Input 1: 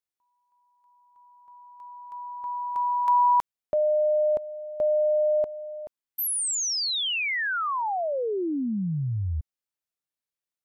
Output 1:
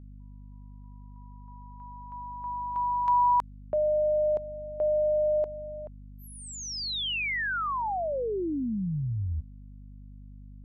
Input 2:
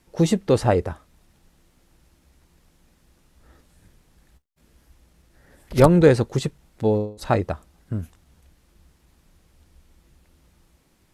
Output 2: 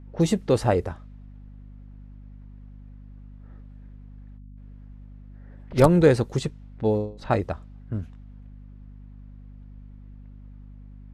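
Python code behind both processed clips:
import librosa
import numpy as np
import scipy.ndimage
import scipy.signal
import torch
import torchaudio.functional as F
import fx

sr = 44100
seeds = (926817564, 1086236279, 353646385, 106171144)

y = fx.env_lowpass(x, sr, base_hz=1900.0, full_db=-16.5)
y = fx.add_hum(y, sr, base_hz=50, snr_db=16)
y = F.gain(torch.from_numpy(y), -2.5).numpy()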